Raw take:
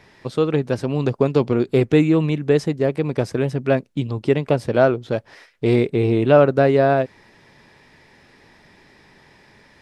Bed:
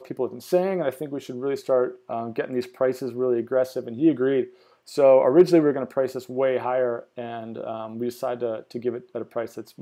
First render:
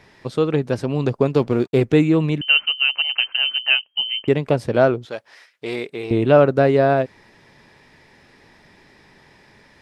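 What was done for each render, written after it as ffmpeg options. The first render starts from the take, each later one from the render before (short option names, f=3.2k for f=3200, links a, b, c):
-filter_complex "[0:a]asettb=1/sr,asplit=3[a][b][c];[a]atrim=end=1.334[d];[b]atrim=start=1.33:end=1.83,asetpts=PTS-STARTPTS,afade=t=in:d=0.004:c=qsin,afade=t=out:st=0.496:d=0.004:c=qsin,aeval=exprs='sgn(val(0))*max(abs(val(0))-0.00631,0)':c=same[e];[c]atrim=start=1.826[f];[d][e]acrossfade=d=0.004:c1=hsin:c2=qsin[g];[g][f]acrossfade=d=0.004:c1=qsin:c2=hsin,asettb=1/sr,asplit=3[h][i][j];[h]atrim=end=2.414[k];[i]atrim=start=2.41:end=4.28,asetpts=PTS-STARTPTS,afade=t=in:d=0.004:c=qsin,afade=t=out:st=1.866:d=0.004:c=qsin,lowpass=f=2.7k:t=q:w=0.5098,lowpass=f=2.7k:t=q:w=0.6013,lowpass=f=2.7k:t=q:w=0.9,lowpass=f=2.7k:t=q:w=2.563,afreqshift=-3200[l];[j]atrim=start=4.276[m];[k][l]acrossfade=d=0.004:c1=hsin:c2=qsin[n];[n][m]acrossfade=d=0.004:c1=qsin:c2=hsin,asettb=1/sr,asplit=3[o][p][q];[o]atrim=end=5.054[r];[p]atrim=start=5.05:end=6.11,asetpts=PTS-STARTPTS,afade=t=in:d=0.004:c=qsin,afade=t=out:st=1.056:d=0.004:c=qsin,highpass=f=1.1k:p=1[s];[q]atrim=start=6.106[t];[r][s]acrossfade=d=0.004:c1=hsin:c2=qsin[u];[u][t]acrossfade=d=0.004:c1=qsin:c2=hsin"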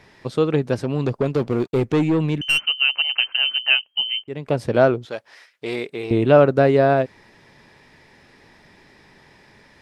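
-filter_complex "[0:a]asettb=1/sr,asplit=3[a][b][c];[a]atrim=end=0.754[d];[b]atrim=start=0.75:end=2.67,asetpts=PTS-STARTPTS,afade=t=in:d=0.004:c=qsin,afade=t=out:st=1.916:d=0.004:c=qsin,aeval=exprs='(tanh(4.47*val(0)+0.2)-tanh(0.2))/4.47':c=same[e];[c]atrim=start=2.666[f];[d][e]acrossfade=d=0.004:c1=hsin:c2=qsin[g];[g][f]acrossfade=d=0.004:c1=qsin:c2=hsin,asplit=2[h][i];[h]atrim=end=4.24,asetpts=PTS-STARTPTS,afade=t=out:st=4.236:d=0.004:c=hsin[j];[i]atrim=start=4.24,asetpts=PTS-STARTPTS,afade=t=in:d=0.4[k];[j][k]concat=n=2:v=0:a=1"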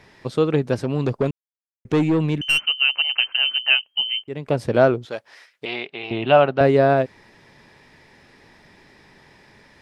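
-filter_complex "[0:a]asettb=1/sr,asplit=3[a][b][c];[a]atrim=end=5.654[d];[b]atrim=start=5.65:end=6.61,asetpts=PTS-STARTPTS,afade=t=in:d=0.004:c=qsin,afade=t=out:st=0.956:d=0.004:c=qsin,highpass=180,equalizer=f=210:t=q:w=4:g=-6,equalizer=f=310:t=q:w=4:g=-8,equalizer=f=470:t=q:w=4:g=-10,equalizer=f=760:t=q:w=4:g=7,equalizer=f=2.9k:t=q:w=4:g=10,lowpass=f=4.6k:w=0.5412,lowpass=f=4.6k:w=1.3066[e];[c]atrim=start=6.606[f];[d][e]acrossfade=d=0.004:c1=hsin:c2=qsin[g];[g][f]acrossfade=d=0.004:c1=qsin:c2=hsin,asplit=3[h][i][j];[h]atrim=end=1.31,asetpts=PTS-STARTPTS,afade=t=out:st=1.306:d=0.004:c=hsin[k];[i]atrim=start=1.31:end=1.85,asetpts=PTS-STARTPTS,volume=0[l];[j]atrim=start=1.85,asetpts=PTS-STARTPTS,afade=t=in:d=0.004:c=hsin[m];[k][l][m]concat=n=3:v=0:a=1"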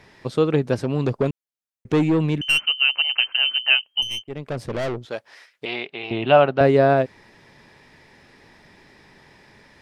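-filter_complex "[0:a]asettb=1/sr,asplit=3[a][b][c];[a]atrim=end=4.024[d];[b]atrim=start=4.02:end=5.11,asetpts=PTS-STARTPTS,afade=t=in:d=0.004:c=qsin,afade=t=out:st=1.086:d=0.004:c=qsin,aeval=exprs='(tanh(14.1*val(0)+0.5)-tanh(0.5))/14.1':c=same[e];[c]atrim=start=5.106[f];[d][e]acrossfade=d=0.004:c1=hsin:c2=qsin[g];[g][f]acrossfade=d=0.004:c1=qsin:c2=hsin"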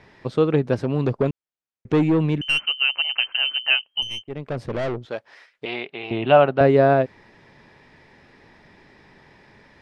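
-af "aemphasis=mode=reproduction:type=50fm"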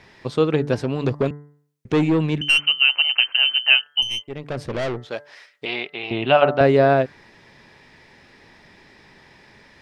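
-af "highshelf=f=2.6k:g=8.5,bandreject=f=146.1:t=h:w=4,bandreject=f=292.2:t=h:w=4,bandreject=f=438.3:t=h:w=4,bandreject=f=584.4:t=h:w=4,bandreject=f=730.5:t=h:w=4,bandreject=f=876.6:t=h:w=4,bandreject=f=1.0227k:t=h:w=4,bandreject=f=1.1688k:t=h:w=4,bandreject=f=1.3149k:t=h:w=4,bandreject=f=1.461k:t=h:w=4,bandreject=f=1.6071k:t=h:w=4,bandreject=f=1.7532k:t=h:w=4,bandreject=f=1.8993k:t=h:w=4,bandreject=f=2.0454k:t=h:w=4"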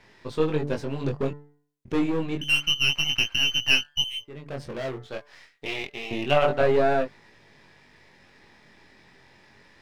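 -af "aeval=exprs='if(lt(val(0),0),0.447*val(0),val(0))':c=same,flanger=delay=19:depth=4.3:speed=0.28"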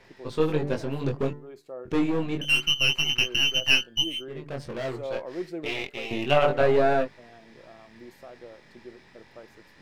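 -filter_complex "[1:a]volume=-18.5dB[a];[0:a][a]amix=inputs=2:normalize=0"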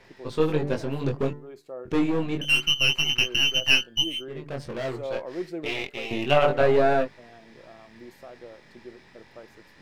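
-af "volume=1dB"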